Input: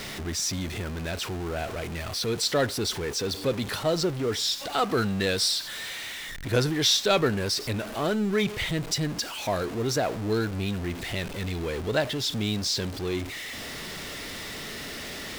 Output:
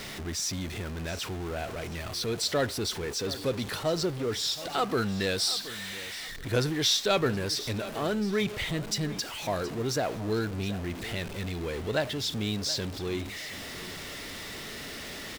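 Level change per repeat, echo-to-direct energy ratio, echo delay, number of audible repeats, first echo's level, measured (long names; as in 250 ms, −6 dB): −11.5 dB, −15.5 dB, 723 ms, 2, −16.0 dB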